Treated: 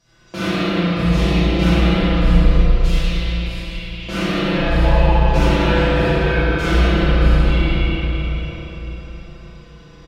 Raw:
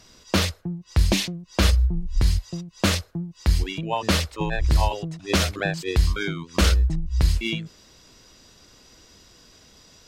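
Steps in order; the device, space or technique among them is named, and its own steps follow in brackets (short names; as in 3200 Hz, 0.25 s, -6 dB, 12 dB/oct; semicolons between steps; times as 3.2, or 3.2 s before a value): 2.36–4.03 inverse Chebyshev band-stop 170–560 Hz, stop band 80 dB; comb 5.9 ms, depth 85%; spring tank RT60 2.7 s, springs 34/52 ms, chirp 50 ms, DRR -10 dB; swimming-pool hall (reverb RT60 4.3 s, pre-delay 13 ms, DRR -9.5 dB; high shelf 5400 Hz -6 dB); gain -13.5 dB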